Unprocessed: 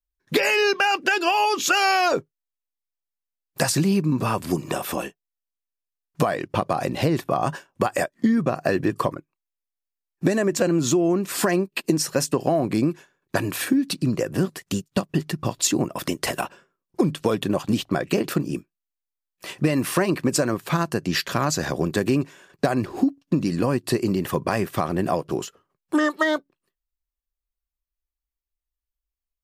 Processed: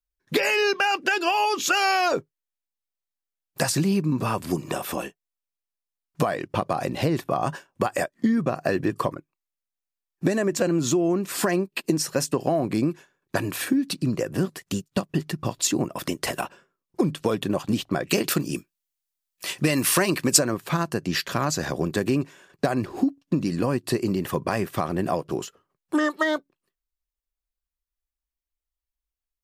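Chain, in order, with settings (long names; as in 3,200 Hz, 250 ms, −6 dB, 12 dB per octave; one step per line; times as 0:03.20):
0:18.09–0:20.39: high-shelf EQ 2,100 Hz +11 dB
level −2 dB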